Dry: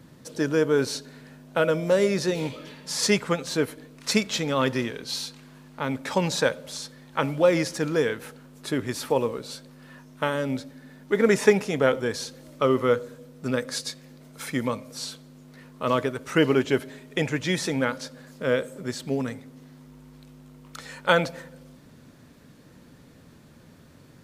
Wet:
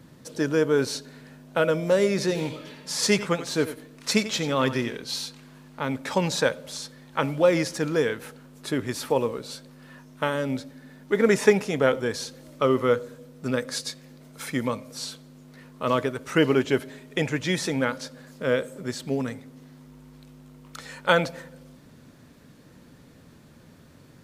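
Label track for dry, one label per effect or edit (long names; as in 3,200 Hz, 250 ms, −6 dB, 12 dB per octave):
2.090000	4.970000	single-tap delay 91 ms −13 dB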